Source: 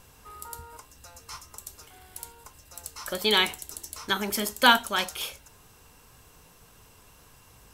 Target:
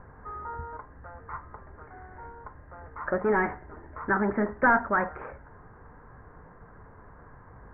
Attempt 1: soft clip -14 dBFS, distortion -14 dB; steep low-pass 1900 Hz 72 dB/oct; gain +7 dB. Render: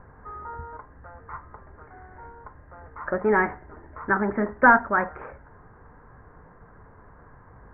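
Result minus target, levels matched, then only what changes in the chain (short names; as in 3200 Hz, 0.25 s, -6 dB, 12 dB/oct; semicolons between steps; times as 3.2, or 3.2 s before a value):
soft clip: distortion -8 dB
change: soft clip -23 dBFS, distortion -6 dB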